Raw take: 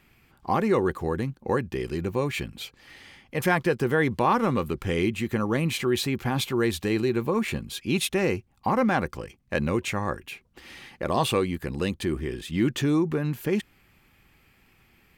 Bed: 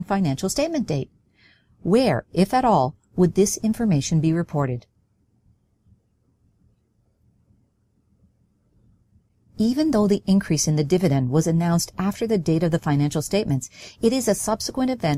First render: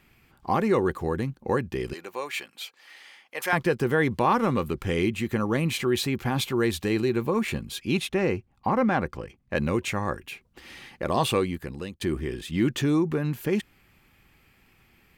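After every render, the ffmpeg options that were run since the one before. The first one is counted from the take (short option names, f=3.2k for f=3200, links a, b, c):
-filter_complex "[0:a]asettb=1/sr,asplit=3[a][b][c];[a]atrim=end=1.934[d];[b]atrim=start=1.93:end=3.53,asetpts=PTS-STARTPTS,afade=t=in:d=0.004:c=qsin,afade=t=out:st=1.596:d=0.004:c=qsin,highpass=670[e];[c]atrim=start=3.526[f];[d][e]acrossfade=d=0.004:c1=hsin:c2=qsin[g];[g][f]acrossfade=d=0.004:c1=qsin:c2=hsin,asettb=1/sr,asplit=3[h][i][j];[h]atrim=end=7.974[k];[i]atrim=start=7.97:end=9.56,asetpts=PTS-STARTPTS,afade=t=in:d=0.004:c=qsin,afade=t=out:st=1.586:d=0.004:c=qsin,highshelf=f=4.6k:g=-11[l];[j]atrim=start=9.556[m];[k][l]acrossfade=d=0.004:c1=hsin:c2=qsin[n];[n][m]acrossfade=d=0.004:c1=qsin:c2=hsin,asplit=2[o][p];[o]atrim=end=12.01,asetpts=PTS-STARTPTS,afade=t=out:st=11.42:d=0.59:silence=0.149624[q];[p]atrim=start=12.01,asetpts=PTS-STARTPTS,afade=t=in:d=0.004:c=hsin:silence=0.149624[r];[q][r]concat=n=2:v=0:a=1"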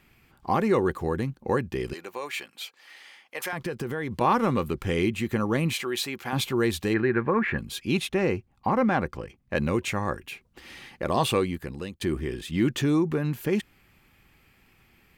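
-filter_complex "[0:a]asettb=1/sr,asplit=3[a][b][c];[a]atrim=end=1.994[d];[b]atrim=start=1.99:end=4.21,asetpts=PTS-STARTPTS,afade=t=in:d=0.004:c=qsin,afade=t=out:st=2.216:d=0.004:c=qsin,acompressor=threshold=-27dB:ratio=6:attack=3.2:release=140:knee=1:detection=peak[e];[c]atrim=start=4.206[f];[d][e]acrossfade=d=0.004:c1=hsin:c2=qsin[g];[g][f]acrossfade=d=0.004:c1=qsin:c2=hsin,asettb=1/sr,asplit=3[h][i][j];[h]atrim=end=5.744[k];[i]atrim=start=5.74:end=6.33,asetpts=PTS-STARTPTS,afade=t=in:d=0.004:c=qsin,afade=t=out:st=0.586:d=0.004:c=qsin,highpass=f=670:p=1[l];[j]atrim=start=6.326[m];[k][l]acrossfade=d=0.004:c1=hsin:c2=qsin[n];[n][m]acrossfade=d=0.004:c1=qsin:c2=hsin,asplit=3[o][p][q];[o]afade=t=out:st=6.93:d=0.02[r];[p]lowpass=f=1.7k:t=q:w=4.8,afade=t=in:st=6.93:d=0.02,afade=t=out:st=7.57:d=0.02[s];[q]afade=t=in:st=7.57:d=0.02[t];[r][s][t]amix=inputs=3:normalize=0"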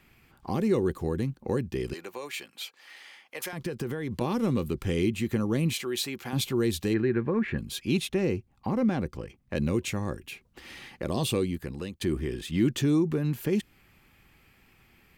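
-filter_complex "[0:a]acrossover=split=480|3000[a][b][c];[b]acompressor=threshold=-43dB:ratio=3[d];[a][d][c]amix=inputs=3:normalize=0"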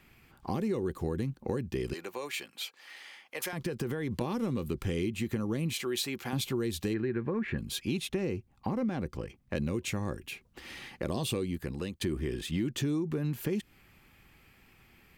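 -af "acompressor=threshold=-28dB:ratio=6"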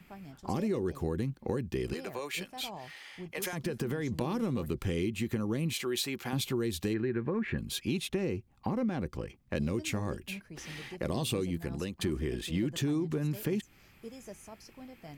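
-filter_complex "[1:a]volume=-26.5dB[a];[0:a][a]amix=inputs=2:normalize=0"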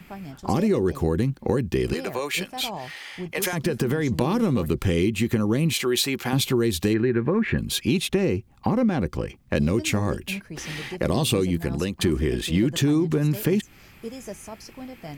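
-af "volume=10dB"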